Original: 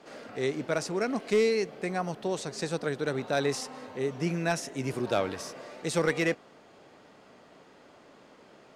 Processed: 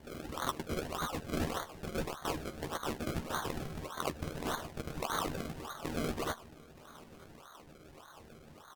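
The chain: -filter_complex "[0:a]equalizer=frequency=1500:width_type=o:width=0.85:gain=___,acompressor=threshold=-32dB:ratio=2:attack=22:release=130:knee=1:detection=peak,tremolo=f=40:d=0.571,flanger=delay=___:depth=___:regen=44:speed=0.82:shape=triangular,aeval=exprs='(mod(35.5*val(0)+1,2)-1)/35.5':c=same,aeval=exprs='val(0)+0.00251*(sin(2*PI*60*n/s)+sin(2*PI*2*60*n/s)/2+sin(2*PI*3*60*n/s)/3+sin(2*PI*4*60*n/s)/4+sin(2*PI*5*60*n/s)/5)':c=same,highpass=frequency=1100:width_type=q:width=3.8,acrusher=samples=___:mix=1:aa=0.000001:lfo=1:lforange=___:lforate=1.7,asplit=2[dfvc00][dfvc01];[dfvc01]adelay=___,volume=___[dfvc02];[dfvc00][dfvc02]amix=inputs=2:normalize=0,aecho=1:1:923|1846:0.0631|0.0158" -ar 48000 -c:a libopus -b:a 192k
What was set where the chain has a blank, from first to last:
8.5, 8.7, 7.7, 33, 33, 13, -8dB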